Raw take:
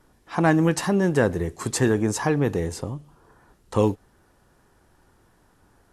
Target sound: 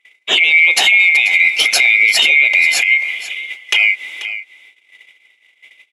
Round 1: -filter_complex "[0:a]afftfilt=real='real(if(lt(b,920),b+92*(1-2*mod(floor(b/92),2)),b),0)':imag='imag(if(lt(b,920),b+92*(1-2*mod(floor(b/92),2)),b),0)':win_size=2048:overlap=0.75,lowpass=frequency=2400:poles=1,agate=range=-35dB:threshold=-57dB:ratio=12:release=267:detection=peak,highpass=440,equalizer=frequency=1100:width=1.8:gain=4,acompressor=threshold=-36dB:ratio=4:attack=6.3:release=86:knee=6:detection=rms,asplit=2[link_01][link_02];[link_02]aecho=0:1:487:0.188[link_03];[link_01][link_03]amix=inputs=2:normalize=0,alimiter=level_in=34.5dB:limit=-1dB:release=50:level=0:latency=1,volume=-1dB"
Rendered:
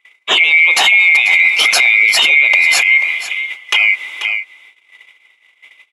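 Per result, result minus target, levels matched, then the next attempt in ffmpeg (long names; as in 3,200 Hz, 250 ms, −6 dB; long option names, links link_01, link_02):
1,000 Hz band +5.5 dB; downward compressor: peak gain reduction −5 dB
-filter_complex "[0:a]afftfilt=real='real(if(lt(b,920),b+92*(1-2*mod(floor(b/92),2)),b),0)':imag='imag(if(lt(b,920),b+92*(1-2*mod(floor(b/92),2)),b),0)':win_size=2048:overlap=0.75,lowpass=frequency=2400:poles=1,agate=range=-35dB:threshold=-57dB:ratio=12:release=267:detection=peak,highpass=440,equalizer=frequency=1100:width=1.8:gain=-7,acompressor=threshold=-36dB:ratio=4:attack=6.3:release=86:knee=6:detection=rms,asplit=2[link_01][link_02];[link_02]aecho=0:1:487:0.188[link_03];[link_01][link_03]amix=inputs=2:normalize=0,alimiter=level_in=34.5dB:limit=-1dB:release=50:level=0:latency=1,volume=-1dB"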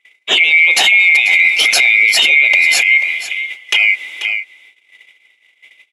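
downward compressor: peak gain reduction −6 dB
-filter_complex "[0:a]afftfilt=real='real(if(lt(b,920),b+92*(1-2*mod(floor(b/92),2)),b),0)':imag='imag(if(lt(b,920),b+92*(1-2*mod(floor(b/92),2)),b),0)':win_size=2048:overlap=0.75,lowpass=frequency=2400:poles=1,agate=range=-35dB:threshold=-57dB:ratio=12:release=267:detection=peak,highpass=440,equalizer=frequency=1100:width=1.8:gain=-7,acompressor=threshold=-44dB:ratio=4:attack=6.3:release=86:knee=6:detection=rms,asplit=2[link_01][link_02];[link_02]aecho=0:1:487:0.188[link_03];[link_01][link_03]amix=inputs=2:normalize=0,alimiter=level_in=34.5dB:limit=-1dB:release=50:level=0:latency=1,volume=-1dB"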